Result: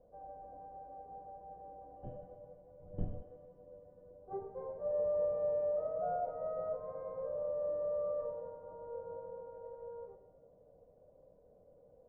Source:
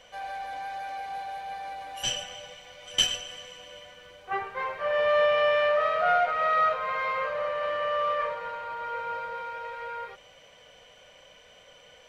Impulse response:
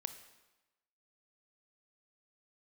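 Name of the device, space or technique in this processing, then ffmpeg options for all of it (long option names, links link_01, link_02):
next room: -filter_complex "[0:a]lowpass=frequency=580:width=0.5412,lowpass=frequency=580:width=1.3066[link_01];[1:a]atrim=start_sample=2205[link_02];[link_01][link_02]afir=irnorm=-1:irlink=0,asettb=1/sr,asplit=3[link_03][link_04][link_05];[link_03]atrim=end=2.804[link_06];[link_04]atrim=start=2.8:end=3.23,asetpts=PTS-STARTPTS,afade=type=in:duration=0.004:curve=qsin,afade=type=out:start_time=0.426:duration=0.004:curve=qsin,bass=frequency=250:gain=12,treble=frequency=4000:gain=-3[link_07];[link_05]atrim=start=3.226[link_08];[link_06][link_07]acrossfade=duration=0.004:curve1=hsin:curve2=qsin[link_09];[link_09][link_08]acrossfade=duration=0.004:curve1=qsin:curve2=hsin,volume=-1dB"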